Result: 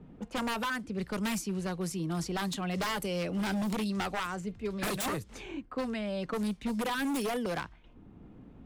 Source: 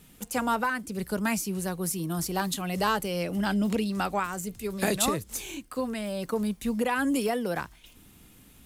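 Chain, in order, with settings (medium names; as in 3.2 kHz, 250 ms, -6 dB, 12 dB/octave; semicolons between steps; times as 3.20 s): level-controlled noise filter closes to 670 Hz, open at -23 dBFS; wavefolder -24 dBFS; three bands compressed up and down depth 40%; trim -2.5 dB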